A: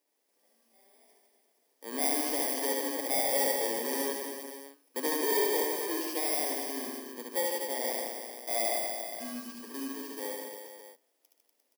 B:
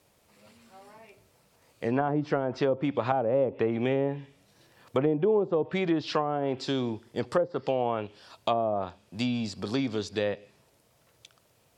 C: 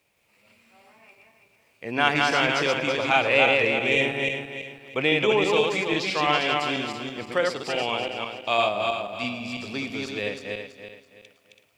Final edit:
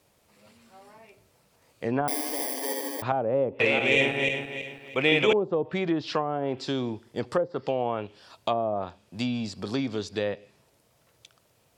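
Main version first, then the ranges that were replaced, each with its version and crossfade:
B
2.08–3.02 from A
3.6–5.33 from C

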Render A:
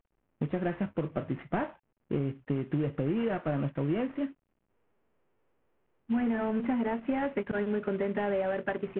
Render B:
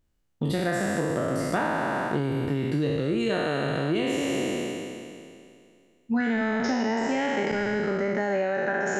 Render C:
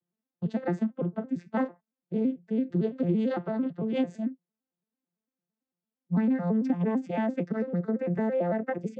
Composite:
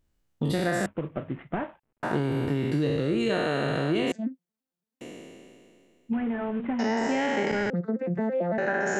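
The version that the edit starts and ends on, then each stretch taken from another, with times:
B
0.86–2.03 from A
4.12–5.01 from C
6.13–6.79 from A
7.7–8.58 from C

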